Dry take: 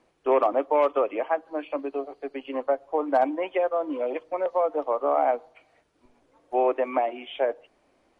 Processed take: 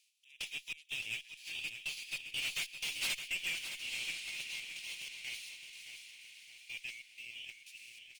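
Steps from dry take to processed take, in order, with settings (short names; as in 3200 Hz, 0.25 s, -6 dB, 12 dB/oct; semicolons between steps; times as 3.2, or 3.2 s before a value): spectral whitening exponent 0.6; Doppler pass-by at 2.66, 17 m/s, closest 6.8 m; gate -59 dBFS, range -6 dB; elliptic high-pass 2500 Hz, stop band 50 dB; reverse; upward compressor, threshold -54 dBFS; reverse; step gate "xxx..xxxx..x" 186 bpm -24 dB; diffused feedback echo 1.032 s, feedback 41%, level -14 dB; tube stage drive 49 dB, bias 0.25; feedback echo 0.615 s, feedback 41%, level -9 dB; gain +16.5 dB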